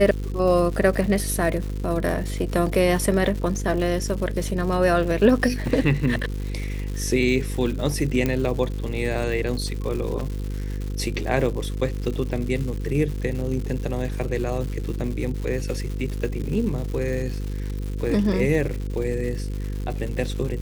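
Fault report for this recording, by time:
buzz 50 Hz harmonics 10 -28 dBFS
crackle 260/s -31 dBFS
8.26 pop -10 dBFS

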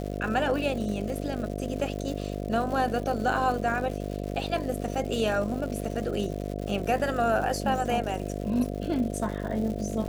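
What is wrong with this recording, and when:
buzz 50 Hz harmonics 14 -33 dBFS
crackle 230/s -35 dBFS

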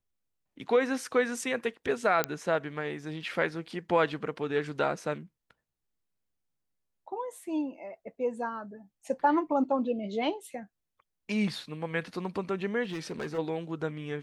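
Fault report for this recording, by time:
2.24 pop -10 dBFS
12.83–13.39 clipped -31 dBFS

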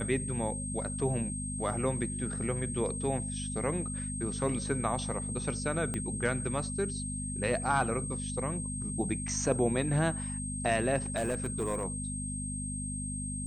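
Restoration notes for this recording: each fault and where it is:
hum 50 Hz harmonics 5 -38 dBFS
tone 8400 Hz -38 dBFS
5.94 pop -21 dBFS
11.16–11.83 clipped -26.5 dBFS

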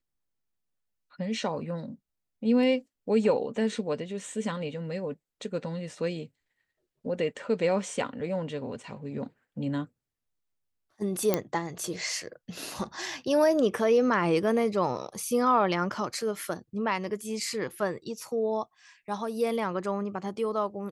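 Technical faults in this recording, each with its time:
11.34 pop -9 dBFS

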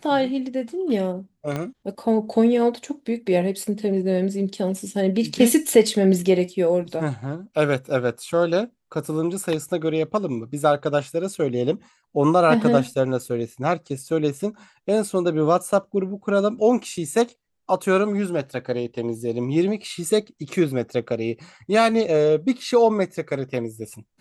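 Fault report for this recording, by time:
1.56 pop -14 dBFS

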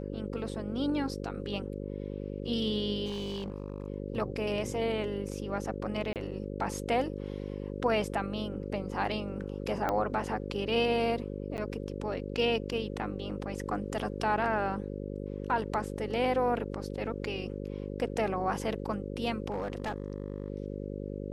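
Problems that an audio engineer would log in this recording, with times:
buzz 50 Hz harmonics 11 -38 dBFS
3.05–3.88 clipped -31 dBFS
6.13–6.16 gap 28 ms
9.89 pop -17 dBFS
11.57–11.58 gap 9.4 ms
19.5–20.48 clipped -29 dBFS

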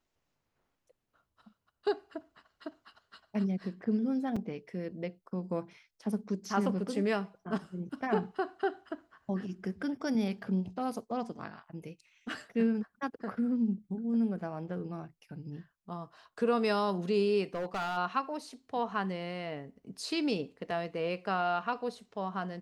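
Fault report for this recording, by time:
4.36 gap 4.6 ms
17.54–17.98 clipped -30.5 dBFS

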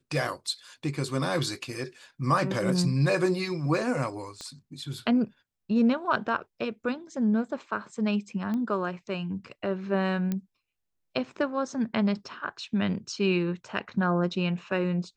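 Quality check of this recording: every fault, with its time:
4.41 pop -25 dBFS
8.54 pop -22 dBFS
10.32 pop -17 dBFS

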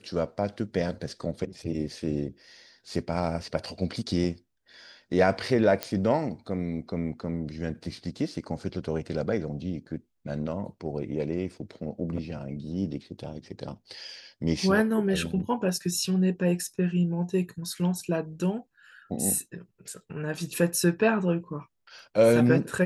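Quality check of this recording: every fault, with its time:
5.83 pop -12 dBFS

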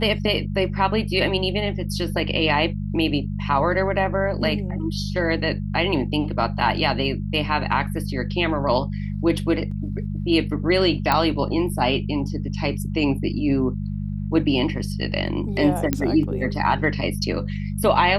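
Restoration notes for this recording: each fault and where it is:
hum 50 Hz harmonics 4 -27 dBFS
9.71 gap 4.3 ms
11.12 pop -6 dBFS
15.93 pop -6 dBFS

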